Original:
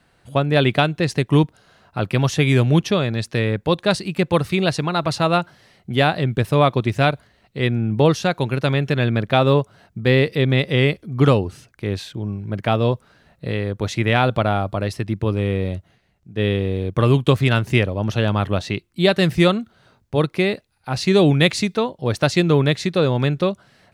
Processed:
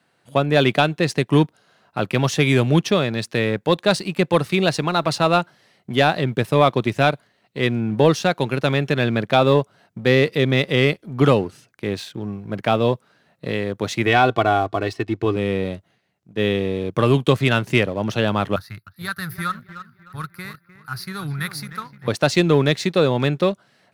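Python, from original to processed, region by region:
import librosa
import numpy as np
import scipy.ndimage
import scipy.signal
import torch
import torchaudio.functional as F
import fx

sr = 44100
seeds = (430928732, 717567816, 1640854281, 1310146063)

y = fx.chain(x, sr, fx.air_absorb(metres=78.0),
    fx.comb(ms=2.7, depth=0.71), at=(14.06, 15.36))
y = fx.chain(y, sr, fx.curve_eq(hz=(110.0, 160.0, 340.0, 610.0, 1000.0, 1400.0, 3000.0, 4700.0, 7500.0, 11000.0), db=(0, -10, -25, -29, -10, 3, -24, -5, -21, 9)),
    fx.echo_wet_lowpass(ms=304, feedback_pct=43, hz=2200.0, wet_db=-10.0), at=(18.56, 22.08))
y = scipy.signal.sosfilt(scipy.signal.bessel(4, 160.0, 'highpass', norm='mag', fs=sr, output='sos'), y)
y = fx.leveller(y, sr, passes=1)
y = y * librosa.db_to_amplitude(-2.0)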